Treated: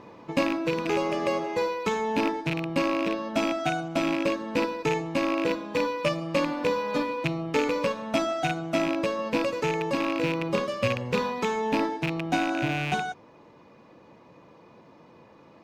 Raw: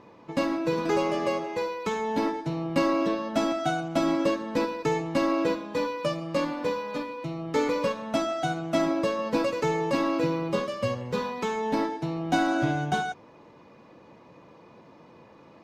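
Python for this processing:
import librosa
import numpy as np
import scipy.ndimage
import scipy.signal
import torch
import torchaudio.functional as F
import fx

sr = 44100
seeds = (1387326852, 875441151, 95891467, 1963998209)

y = fx.rattle_buzz(x, sr, strikes_db=-32.0, level_db=-19.0)
y = fx.rider(y, sr, range_db=10, speed_s=0.5)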